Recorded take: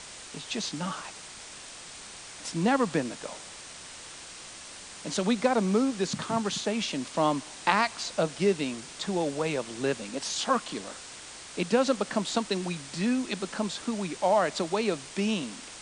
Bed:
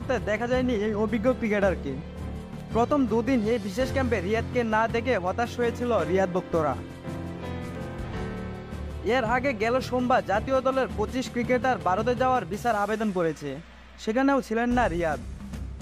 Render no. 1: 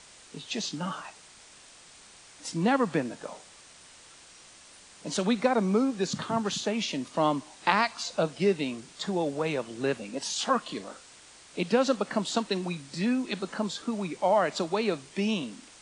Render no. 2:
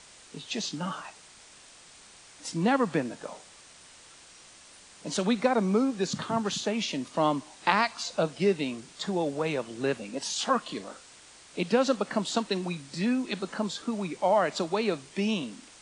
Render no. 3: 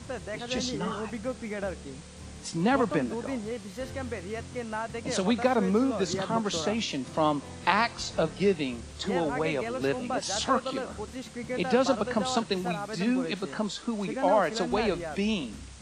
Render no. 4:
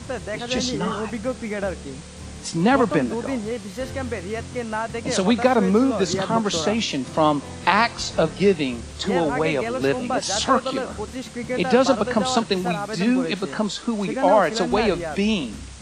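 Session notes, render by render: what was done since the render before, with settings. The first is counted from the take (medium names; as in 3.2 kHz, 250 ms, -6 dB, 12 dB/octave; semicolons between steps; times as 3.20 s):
noise print and reduce 8 dB
no audible change
add bed -10 dB
trim +7 dB; peak limiter -1 dBFS, peak gain reduction 2 dB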